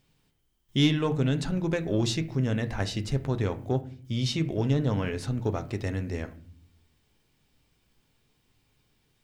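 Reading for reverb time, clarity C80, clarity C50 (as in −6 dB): 0.50 s, 20.5 dB, 16.0 dB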